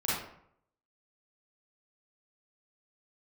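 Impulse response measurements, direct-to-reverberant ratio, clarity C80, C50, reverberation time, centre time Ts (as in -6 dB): -9.0 dB, 4.0 dB, -2.0 dB, 0.70 s, 68 ms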